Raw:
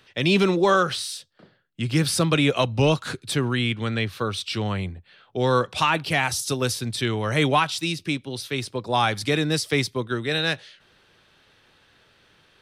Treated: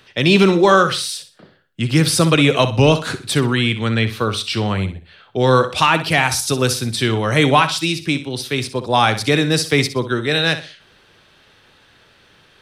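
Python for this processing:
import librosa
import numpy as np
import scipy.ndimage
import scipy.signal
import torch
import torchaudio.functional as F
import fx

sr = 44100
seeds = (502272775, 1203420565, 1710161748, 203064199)

y = fx.echo_feedback(x, sr, ms=62, feedback_pct=31, wet_db=-12)
y = y * librosa.db_to_amplitude(6.5)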